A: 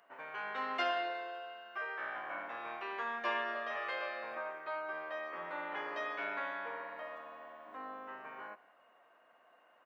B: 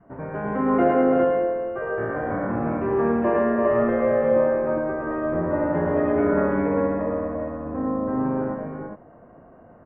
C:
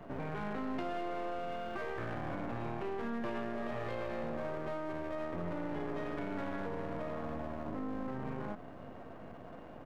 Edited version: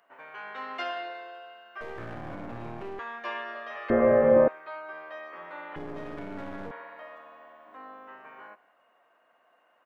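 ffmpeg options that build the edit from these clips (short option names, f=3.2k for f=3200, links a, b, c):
-filter_complex "[2:a]asplit=2[a][b];[0:a]asplit=4[c][d][e][f];[c]atrim=end=1.812[g];[a]atrim=start=1.808:end=2.992[h];[d]atrim=start=2.988:end=3.902[i];[1:a]atrim=start=3.898:end=4.482[j];[e]atrim=start=4.478:end=5.762[k];[b]atrim=start=5.758:end=6.712[l];[f]atrim=start=6.708[m];[g][h]acrossfade=d=0.004:c1=hsin:c2=hsin[n];[n][i]acrossfade=d=0.004:c1=hsin:c2=hsin[o];[o][j]acrossfade=d=0.004:c1=hsin:c2=hsin[p];[p][k]acrossfade=d=0.004:c1=hsin:c2=hsin[q];[q][l]acrossfade=d=0.004:c1=hsin:c2=hsin[r];[r][m]acrossfade=d=0.004:c1=hsin:c2=hsin"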